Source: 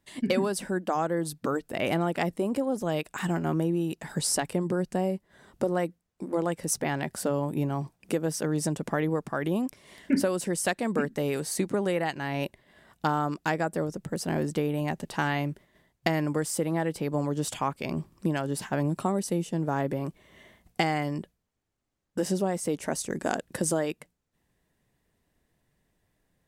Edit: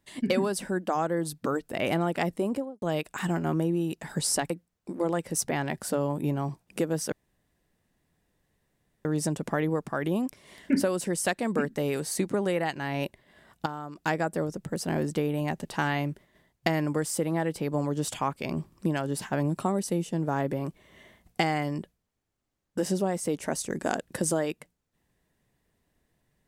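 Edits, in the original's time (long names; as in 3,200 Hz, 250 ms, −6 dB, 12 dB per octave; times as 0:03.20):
0:02.47–0:02.82: fade out and dull
0:04.50–0:05.83: remove
0:08.45: splice in room tone 1.93 s
0:13.06–0:13.36: clip gain −10.5 dB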